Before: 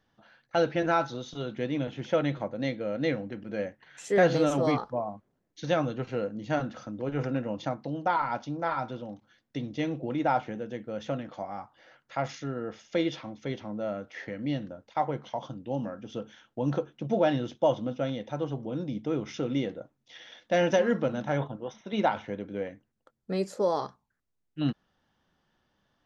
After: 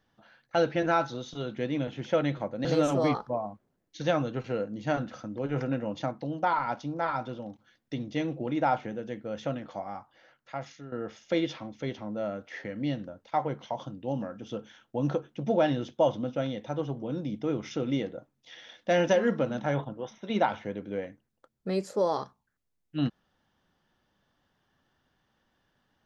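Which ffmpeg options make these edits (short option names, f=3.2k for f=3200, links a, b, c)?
-filter_complex "[0:a]asplit=3[a][b][c];[a]atrim=end=2.652[d];[b]atrim=start=4.278:end=12.55,asetpts=PTS-STARTPTS,afade=t=out:st=7.172:d=1.1:silence=0.266073[e];[c]atrim=start=12.55,asetpts=PTS-STARTPTS,afade=t=in:d=0.004:c=hsin:silence=0.266073[f];[e][f]concat=n=2:v=0:a=1[g];[d][g]acrossfade=d=0.004:c1=hsin:c2=hsin"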